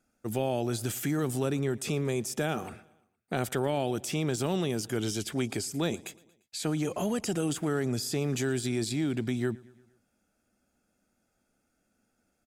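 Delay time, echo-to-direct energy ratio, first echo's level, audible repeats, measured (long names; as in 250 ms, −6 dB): 116 ms, −22.0 dB, −23.5 dB, 3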